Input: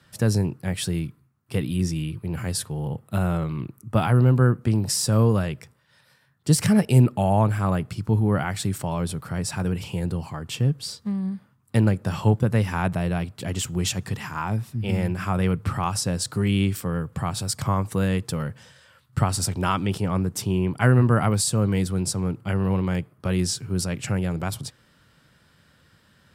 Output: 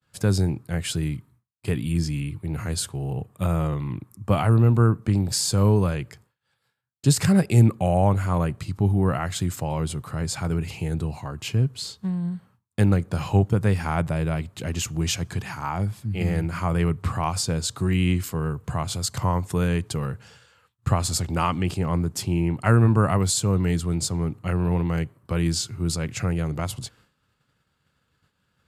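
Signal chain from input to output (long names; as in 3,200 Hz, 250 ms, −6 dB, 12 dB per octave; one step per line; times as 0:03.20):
downward expander −49 dBFS
wrong playback speed 48 kHz file played as 44.1 kHz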